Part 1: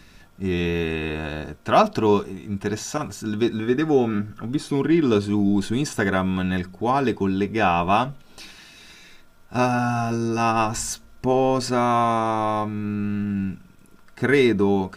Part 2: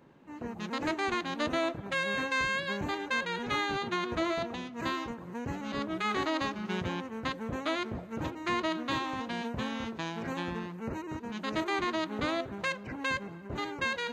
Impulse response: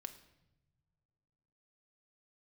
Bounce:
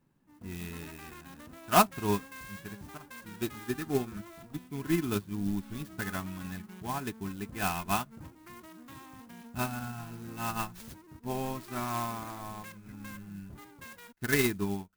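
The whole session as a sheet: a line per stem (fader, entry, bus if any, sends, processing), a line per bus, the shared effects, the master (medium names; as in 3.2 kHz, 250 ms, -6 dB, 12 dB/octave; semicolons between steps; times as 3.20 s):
+2.5 dB, 0.00 s, no send, upward expansion 2.5:1, over -36 dBFS
-11.5 dB, 0.00 s, no send, tilt shelf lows +5 dB, about 1.2 kHz; peak limiter -21.5 dBFS, peak gain reduction 5.5 dB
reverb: none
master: peaking EQ 500 Hz -12 dB 1.8 oct; sampling jitter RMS 0.05 ms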